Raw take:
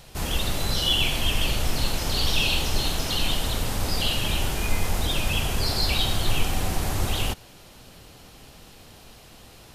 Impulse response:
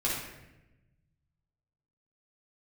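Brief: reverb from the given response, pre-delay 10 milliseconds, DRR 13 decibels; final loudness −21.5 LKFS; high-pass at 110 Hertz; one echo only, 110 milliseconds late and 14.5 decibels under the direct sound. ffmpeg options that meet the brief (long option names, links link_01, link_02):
-filter_complex "[0:a]highpass=110,aecho=1:1:110:0.188,asplit=2[link_01][link_02];[1:a]atrim=start_sample=2205,adelay=10[link_03];[link_02][link_03]afir=irnorm=-1:irlink=0,volume=-21dB[link_04];[link_01][link_04]amix=inputs=2:normalize=0,volume=4dB"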